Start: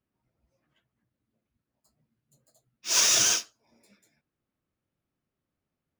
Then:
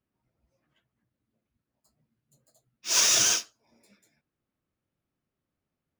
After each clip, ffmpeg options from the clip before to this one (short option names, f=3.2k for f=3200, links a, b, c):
-af anull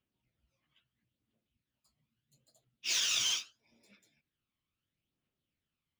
-af "equalizer=f=3.1k:t=o:w=1.1:g=14.5,acompressor=threshold=-21dB:ratio=5,aphaser=in_gain=1:out_gain=1:delay=1:decay=0.47:speed=0.76:type=triangular,volume=-9dB"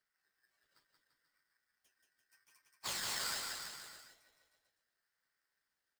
-filter_complex "[0:a]acompressor=threshold=-37dB:ratio=6,asplit=2[a][b];[b]aecho=0:1:180|342|487.8|619|737.1:0.631|0.398|0.251|0.158|0.1[c];[a][c]amix=inputs=2:normalize=0,aeval=exprs='val(0)*sgn(sin(2*PI*1700*n/s))':c=same,volume=-1dB"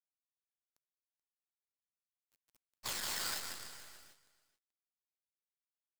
-af "acrusher=bits=7:dc=4:mix=0:aa=0.000001,aecho=1:1:431:0.126"